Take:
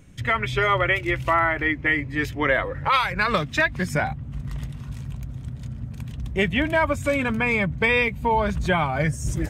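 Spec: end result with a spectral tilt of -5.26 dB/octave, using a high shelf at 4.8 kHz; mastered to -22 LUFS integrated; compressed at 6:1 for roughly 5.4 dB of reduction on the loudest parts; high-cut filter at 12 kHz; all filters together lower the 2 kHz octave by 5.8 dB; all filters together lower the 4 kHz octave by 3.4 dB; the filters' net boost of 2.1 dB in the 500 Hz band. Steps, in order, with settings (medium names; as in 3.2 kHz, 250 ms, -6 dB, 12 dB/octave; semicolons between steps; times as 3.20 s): low-pass 12 kHz; peaking EQ 500 Hz +3 dB; peaking EQ 2 kHz -7 dB; peaking EQ 4 kHz -3.5 dB; treble shelf 4.8 kHz +4.5 dB; compression 6:1, threshold -22 dBFS; trim +6 dB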